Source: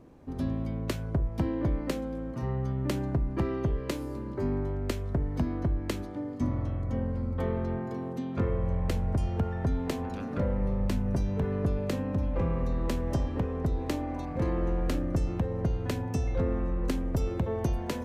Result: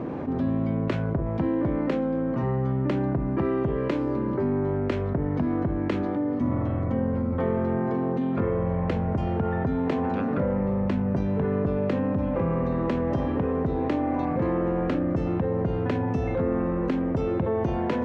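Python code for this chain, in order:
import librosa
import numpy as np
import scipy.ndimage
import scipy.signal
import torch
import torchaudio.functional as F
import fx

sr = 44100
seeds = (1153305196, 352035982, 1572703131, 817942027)

y = fx.bandpass_edges(x, sr, low_hz=130.0, high_hz=2200.0)
y = fx.env_flatten(y, sr, amount_pct=70)
y = F.gain(torch.from_numpy(y), 3.0).numpy()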